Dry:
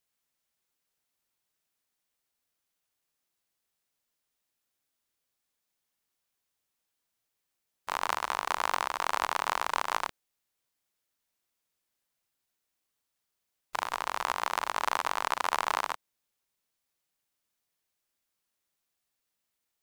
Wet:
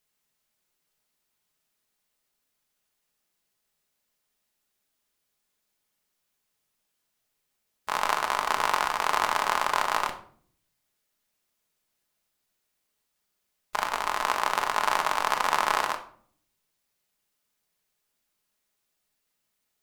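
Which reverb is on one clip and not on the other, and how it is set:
rectangular room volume 690 cubic metres, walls furnished, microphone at 1.4 metres
level +3.5 dB

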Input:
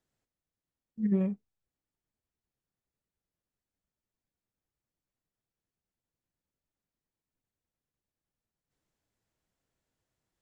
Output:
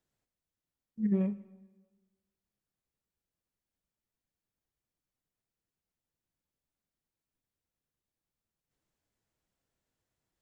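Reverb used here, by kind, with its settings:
dense smooth reverb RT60 1.3 s, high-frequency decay 0.9×, pre-delay 0 ms, DRR 15.5 dB
level −1.5 dB

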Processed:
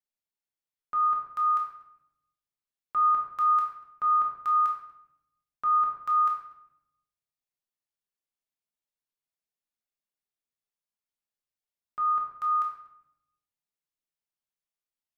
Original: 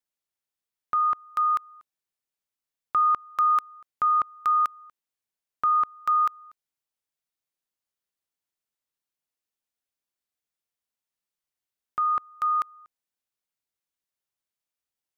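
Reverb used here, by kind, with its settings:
rectangular room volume 250 cubic metres, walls mixed, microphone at 1.3 metres
level −10 dB

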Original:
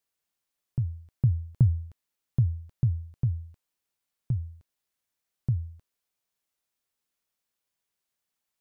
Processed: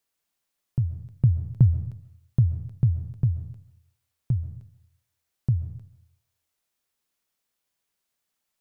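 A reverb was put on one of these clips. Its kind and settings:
comb and all-pass reverb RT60 0.68 s, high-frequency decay 0.95×, pre-delay 95 ms, DRR 11.5 dB
level +3.5 dB

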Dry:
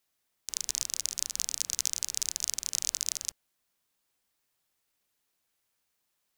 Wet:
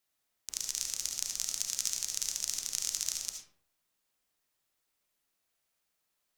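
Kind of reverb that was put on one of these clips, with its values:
comb and all-pass reverb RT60 0.61 s, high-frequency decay 0.55×, pre-delay 30 ms, DRR 2.5 dB
level −3.5 dB

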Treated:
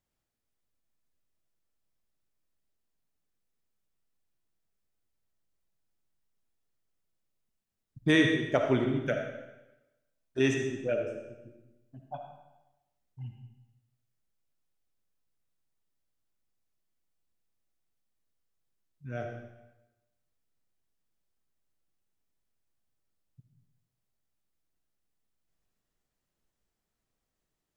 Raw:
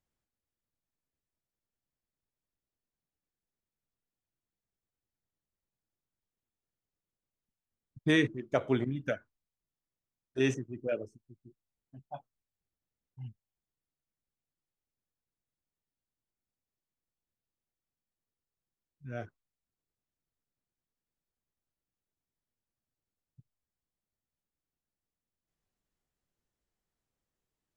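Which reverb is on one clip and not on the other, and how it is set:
comb and all-pass reverb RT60 1 s, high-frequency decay 0.95×, pre-delay 20 ms, DRR 3 dB
level +2 dB

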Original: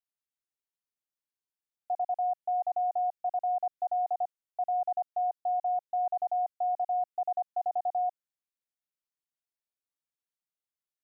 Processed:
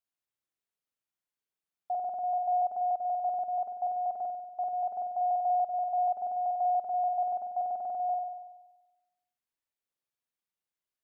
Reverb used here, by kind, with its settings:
spring reverb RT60 1.1 s, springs 47 ms, chirp 40 ms, DRR −1 dB
level −1.5 dB

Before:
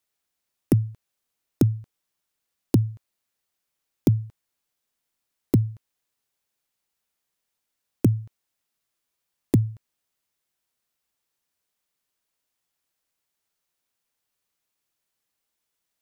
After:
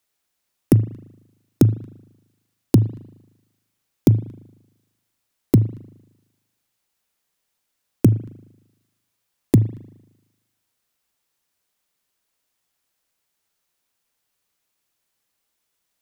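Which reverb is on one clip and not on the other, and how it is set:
spring reverb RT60 1 s, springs 38 ms, chirp 80 ms, DRR 15 dB
level +5 dB

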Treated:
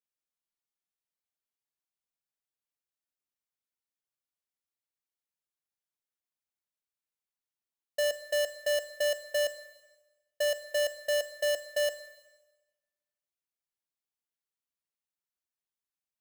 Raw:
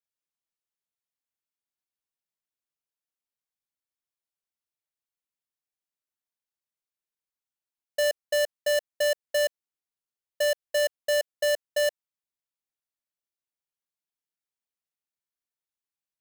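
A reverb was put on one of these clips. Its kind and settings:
four-comb reverb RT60 1.2 s, combs from 32 ms, DRR 13 dB
level −4 dB

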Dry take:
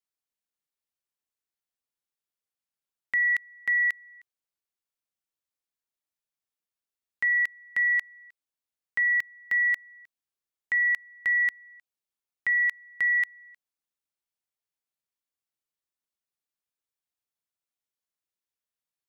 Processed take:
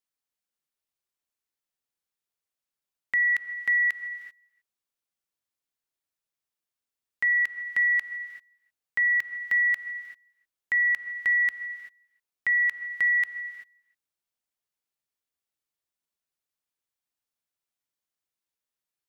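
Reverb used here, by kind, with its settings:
reverb whose tail is shaped and stops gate 410 ms rising, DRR 11.5 dB
level +1 dB

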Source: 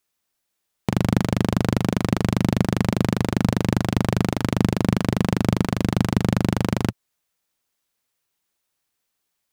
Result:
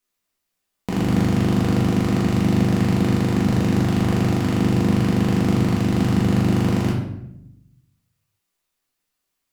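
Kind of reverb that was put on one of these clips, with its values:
rectangular room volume 220 cubic metres, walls mixed, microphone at 1.9 metres
level −6 dB

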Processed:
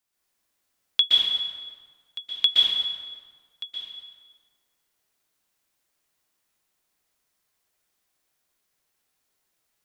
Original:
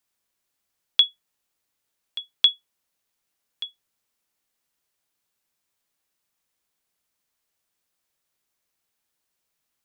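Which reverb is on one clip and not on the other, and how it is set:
dense smooth reverb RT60 1.6 s, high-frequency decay 0.7×, pre-delay 110 ms, DRR −6 dB
level −3 dB

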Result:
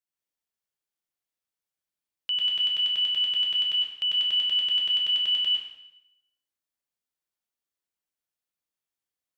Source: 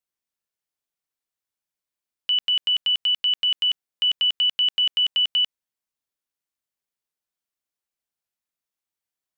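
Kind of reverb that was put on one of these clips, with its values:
dense smooth reverb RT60 0.83 s, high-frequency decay 0.95×, pre-delay 90 ms, DRR −1.5 dB
level −6 dB

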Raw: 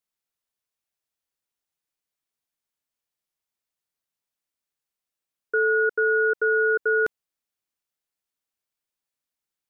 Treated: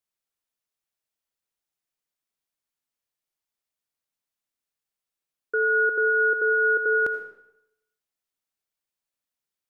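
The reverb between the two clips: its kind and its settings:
comb and all-pass reverb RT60 0.8 s, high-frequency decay 0.95×, pre-delay 40 ms, DRR 7.5 dB
level −2 dB

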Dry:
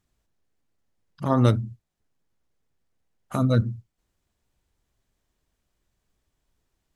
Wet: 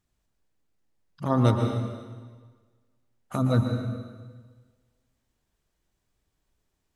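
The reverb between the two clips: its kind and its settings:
dense smooth reverb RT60 1.5 s, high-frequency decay 0.95×, pre-delay 105 ms, DRR 3 dB
level −2.5 dB

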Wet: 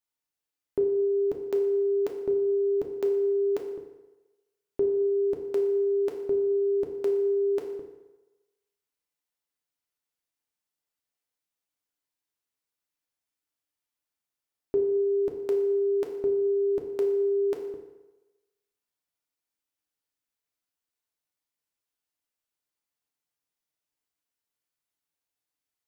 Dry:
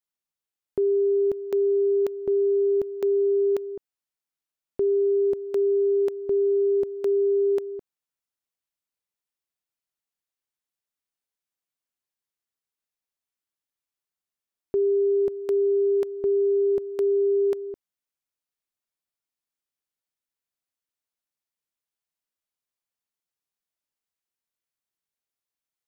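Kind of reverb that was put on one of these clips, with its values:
feedback delay network reverb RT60 1.1 s, low-frequency decay 0.75×, high-frequency decay 0.75×, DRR 1.5 dB
level −1 dB

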